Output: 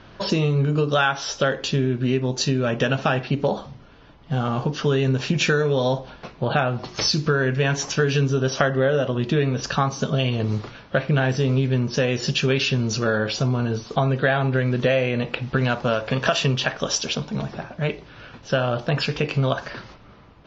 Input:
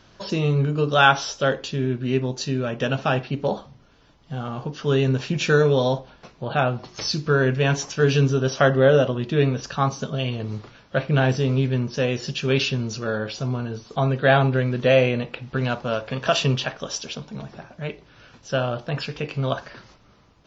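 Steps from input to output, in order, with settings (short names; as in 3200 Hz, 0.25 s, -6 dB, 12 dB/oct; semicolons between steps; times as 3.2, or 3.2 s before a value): dynamic EQ 1800 Hz, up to +4 dB, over -35 dBFS, Q 2.3; compressor 6:1, threshold -25 dBFS, peak gain reduction 15.5 dB; low-pass opened by the level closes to 2900 Hz, open at -26 dBFS; gain +7.5 dB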